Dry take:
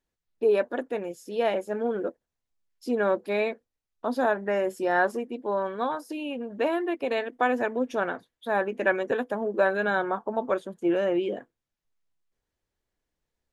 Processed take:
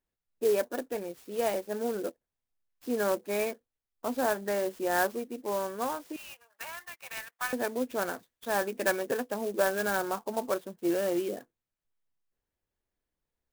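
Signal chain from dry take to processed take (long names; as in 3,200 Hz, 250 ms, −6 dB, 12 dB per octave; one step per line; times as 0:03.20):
0:06.16–0:07.53: high-pass filter 1,100 Hz 24 dB per octave
0:08.12–0:08.83: high-shelf EQ 3,400 Hz +8.5 dB
converter with an unsteady clock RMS 0.048 ms
level −4 dB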